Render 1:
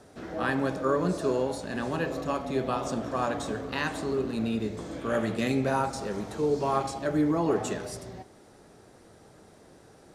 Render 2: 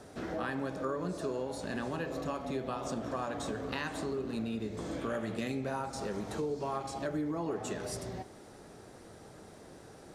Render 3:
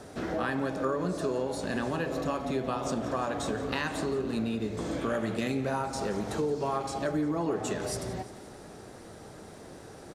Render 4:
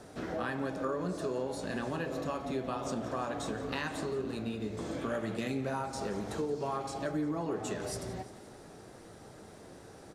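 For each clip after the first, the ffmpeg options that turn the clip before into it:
-af "acompressor=threshold=0.0158:ratio=4,volume=1.26"
-af "aecho=1:1:174|348|522|696|870:0.141|0.0819|0.0475|0.0276|0.016,volume=1.78"
-af "flanger=delay=5.7:depth=5.7:regen=-73:speed=0.56:shape=triangular"

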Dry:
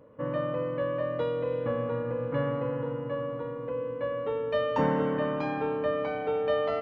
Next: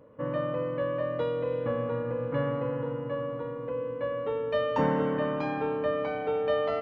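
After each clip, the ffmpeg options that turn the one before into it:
-af anull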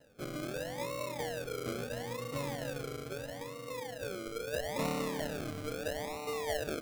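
-af "acrusher=samples=38:mix=1:aa=0.000001:lfo=1:lforange=22.8:lforate=0.76,volume=0.376"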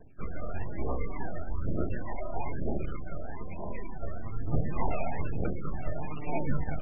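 -af "aeval=exprs='abs(val(0))':c=same,aphaser=in_gain=1:out_gain=1:delay=1.7:decay=0.64:speed=1.1:type=triangular,volume=1.78" -ar 22050 -c:a libmp3lame -b:a 8k

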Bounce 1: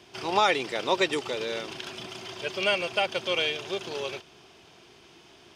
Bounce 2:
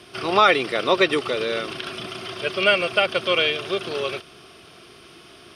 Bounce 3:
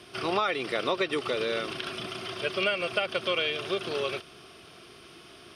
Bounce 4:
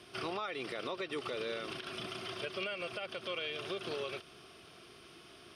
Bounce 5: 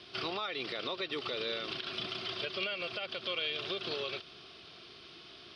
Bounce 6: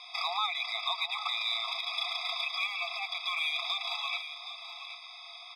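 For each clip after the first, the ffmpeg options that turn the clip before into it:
-filter_complex "[0:a]acrossover=split=4800[s0][s1];[s1]acompressor=threshold=0.002:ratio=4:attack=1:release=60[s2];[s0][s2]amix=inputs=2:normalize=0,superequalizer=9b=0.501:10b=1.58:15b=0.501:16b=2.51,volume=2.24"
-af "acompressor=threshold=0.1:ratio=6,volume=0.668"
-af "alimiter=limit=0.0708:level=0:latency=1:release=142,volume=0.531"
-af "lowpass=f=4200:t=q:w=3.2"
-filter_complex "[0:a]asplit=2[s0][s1];[s1]asoftclip=type=hard:threshold=0.0158,volume=0.282[s2];[s0][s2]amix=inputs=2:normalize=0,aecho=1:1:772:0.282,afftfilt=real='re*eq(mod(floor(b*sr/1024/660),2),1)':imag='im*eq(mod(floor(b*sr/1024/660),2),1)':win_size=1024:overlap=0.75,volume=2.11"

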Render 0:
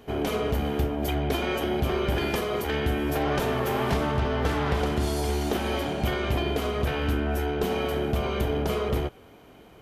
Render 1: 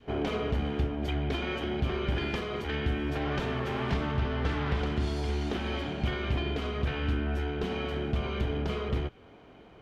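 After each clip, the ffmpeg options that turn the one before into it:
-af "adynamicequalizer=threshold=0.01:dfrequency=640:dqfactor=0.73:tfrequency=640:tqfactor=0.73:attack=5:release=100:ratio=0.375:range=3.5:mode=cutabove:tftype=bell,lowpass=3900,volume=0.794"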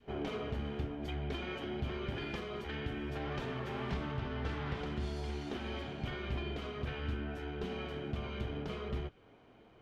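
-af "flanger=delay=5:depth=3.9:regen=-58:speed=0.78:shape=sinusoidal,volume=0.668"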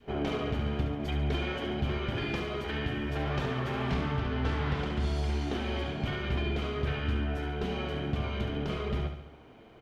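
-af "aecho=1:1:70|140|210|280|350|420:0.398|0.215|0.116|0.0627|0.0339|0.0183,volume=2"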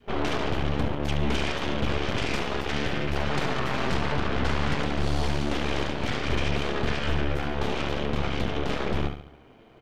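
-af "aeval=exprs='0.133*(cos(1*acos(clip(val(0)/0.133,-1,1)))-cos(1*PI/2))+0.0473*(cos(8*acos(clip(val(0)/0.133,-1,1)))-cos(8*PI/2))':c=same"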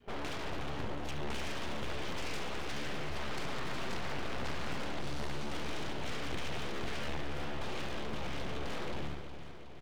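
-af "volume=22.4,asoftclip=hard,volume=0.0447,aecho=1:1:365|730|1095|1460|1825|2190|2555:0.282|0.166|0.0981|0.0579|0.0342|0.0201|0.0119,volume=0.501"

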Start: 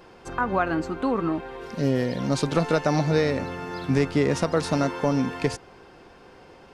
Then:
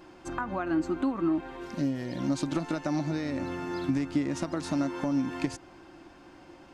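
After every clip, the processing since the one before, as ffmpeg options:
-af "acompressor=threshold=0.0562:ratio=6,superequalizer=6b=2.51:7b=0.355:15b=1.41,volume=0.668"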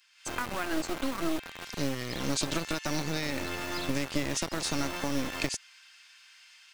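-filter_complex "[0:a]acrossover=split=2000[s0][s1];[s0]acrusher=bits=3:dc=4:mix=0:aa=0.000001[s2];[s1]dynaudnorm=f=120:g=3:m=3.16[s3];[s2][s3]amix=inputs=2:normalize=0"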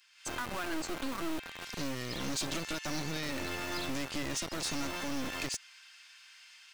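-af "asoftclip=type=tanh:threshold=0.0376"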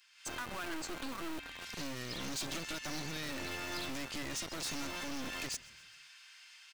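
-filter_complex "[0:a]asoftclip=type=hard:threshold=0.0188,asplit=5[s0][s1][s2][s3][s4];[s1]adelay=131,afreqshift=-37,volume=0.0841[s5];[s2]adelay=262,afreqshift=-74,volume=0.049[s6];[s3]adelay=393,afreqshift=-111,volume=0.0282[s7];[s4]adelay=524,afreqshift=-148,volume=0.0164[s8];[s0][s5][s6][s7][s8]amix=inputs=5:normalize=0,volume=0.891"

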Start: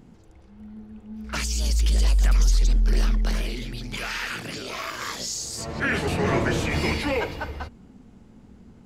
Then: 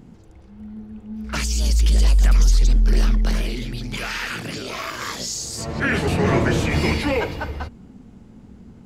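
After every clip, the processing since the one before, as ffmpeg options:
-af "equalizer=f=130:t=o:w=3:g=3.5,volume=1.33"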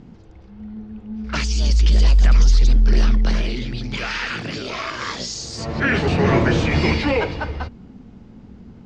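-af "lowpass=f=5800:w=0.5412,lowpass=f=5800:w=1.3066,volume=1.26"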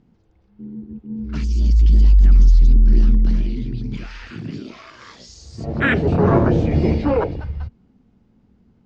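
-af "afwtdn=0.1,volume=1.26"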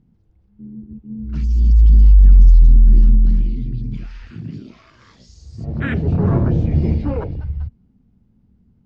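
-af "bass=f=250:g=12,treble=f=4000:g=0,volume=0.355"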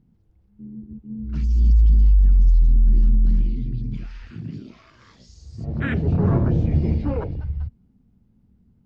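-af "alimiter=limit=0.473:level=0:latency=1:release=318,volume=0.75"

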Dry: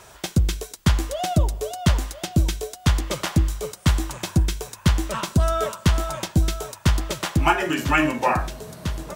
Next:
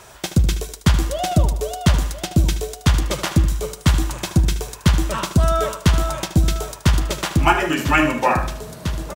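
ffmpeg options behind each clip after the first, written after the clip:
-af "aecho=1:1:76|152|228|304:0.251|0.105|0.0443|0.0186,volume=1.41"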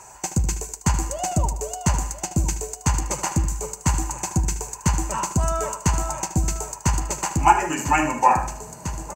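-af "superequalizer=9b=3.16:13b=0.251:15b=3.98,volume=0.501"

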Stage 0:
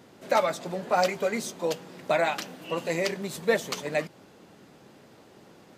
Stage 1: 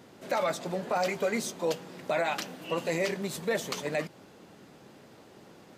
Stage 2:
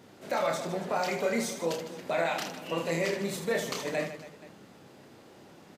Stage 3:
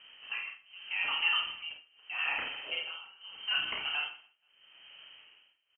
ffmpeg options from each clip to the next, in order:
-af "alimiter=limit=0.106:level=0:latency=1:release=15"
-af "aecho=1:1:30|78|154.8|277.7|474.3:0.631|0.398|0.251|0.158|0.1,volume=0.794"
-filter_complex "[0:a]tremolo=f=0.8:d=0.96,asplit=2[s0][s1];[s1]adelay=50,volume=0.501[s2];[s0][s2]amix=inputs=2:normalize=0,lowpass=f=2800:t=q:w=0.5098,lowpass=f=2800:t=q:w=0.6013,lowpass=f=2800:t=q:w=0.9,lowpass=f=2800:t=q:w=2.563,afreqshift=-3300,volume=0.891"

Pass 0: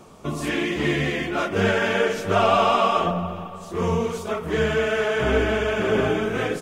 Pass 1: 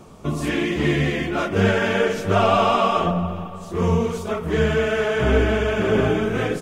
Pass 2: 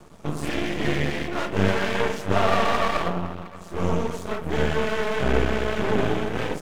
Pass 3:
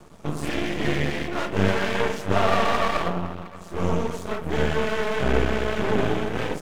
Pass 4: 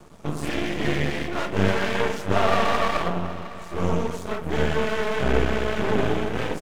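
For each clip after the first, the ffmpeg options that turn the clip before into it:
-af "lowshelf=f=240:g=7"
-af "aeval=exprs='max(val(0),0)':c=same"
-af anull
-af "aecho=1:1:768:0.126"

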